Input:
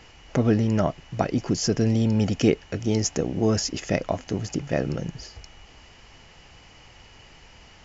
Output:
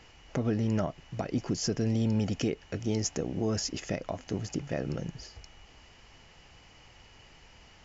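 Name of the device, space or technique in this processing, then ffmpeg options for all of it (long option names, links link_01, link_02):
clipper into limiter: -af "asoftclip=type=hard:threshold=-6.5dB,alimiter=limit=-13.5dB:level=0:latency=1:release=143,volume=-5.5dB"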